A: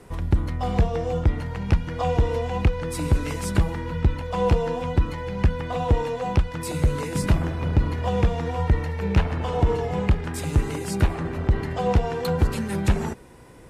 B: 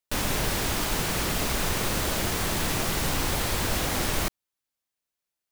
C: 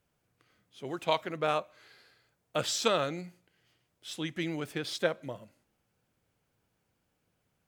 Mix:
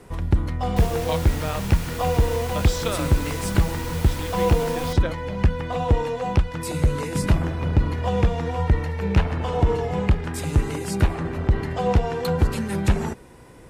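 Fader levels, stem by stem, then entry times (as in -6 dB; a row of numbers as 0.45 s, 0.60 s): +1.0 dB, -8.5 dB, -1.5 dB; 0.00 s, 0.65 s, 0.00 s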